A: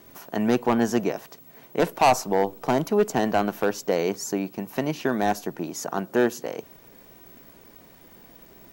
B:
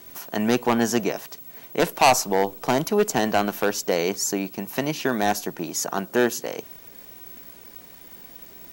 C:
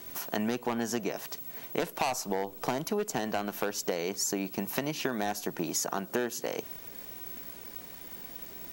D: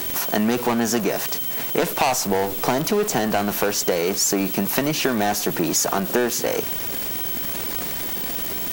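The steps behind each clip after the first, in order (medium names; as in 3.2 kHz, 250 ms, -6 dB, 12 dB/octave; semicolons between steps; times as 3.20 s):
treble shelf 2 kHz +8.5 dB
compression 12:1, threshold -27 dBFS, peak gain reduction 15.5 dB
jump at every zero crossing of -31.5 dBFS; trim +8 dB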